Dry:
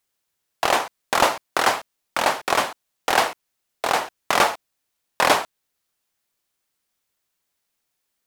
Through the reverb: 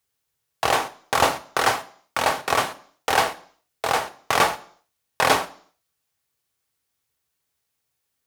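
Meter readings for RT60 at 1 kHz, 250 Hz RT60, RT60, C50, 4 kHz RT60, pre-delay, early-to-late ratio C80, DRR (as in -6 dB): 0.55 s, 0.50 s, 0.55 s, 18.0 dB, 0.60 s, 3 ms, 21.5 dB, 9.0 dB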